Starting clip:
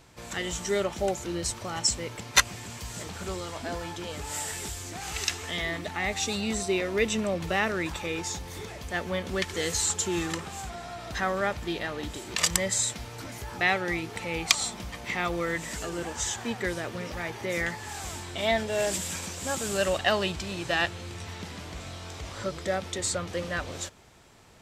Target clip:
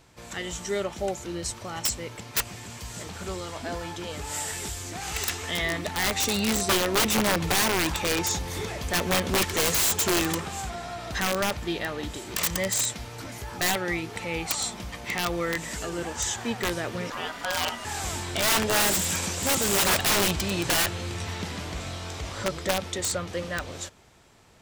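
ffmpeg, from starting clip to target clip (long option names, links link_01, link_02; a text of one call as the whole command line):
ffmpeg -i in.wav -filter_complex "[0:a]dynaudnorm=framelen=540:gausssize=11:maxgain=14dB,asettb=1/sr,asplit=3[link_01][link_02][link_03];[link_01]atrim=end=17.104[link_04];[link_02]atrim=start=17.1:end=17.85,asetpts=PTS-STARTPTS,afade=type=in:duration=0.004:curve=qsin,afade=type=out:start_time=0.746:duration=0.004:curve=qsin,aeval=exprs='val(0)*sin(2*PI*1100*n/s)':channel_layout=same[link_05];[link_03]atrim=start=17.846[link_06];[link_04][link_05]acrossfade=duration=0.004:curve1=hsin:curve2=qsin[link_07];[link_07][link_06]acrossfade=duration=0.004:curve1=qsin:curve2=hsin,aeval=exprs='(mod(5.96*val(0)+1,2)-1)/5.96':channel_layout=same,volume=-1.5dB" out.wav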